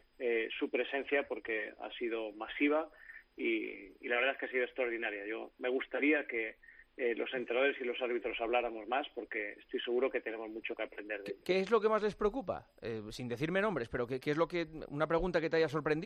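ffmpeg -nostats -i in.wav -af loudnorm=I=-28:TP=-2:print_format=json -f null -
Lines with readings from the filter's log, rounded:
"input_i" : "-35.4",
"input_tp" : "-18.3",
"input_lra" : "2.0",
"input_thresh" : "-45.5",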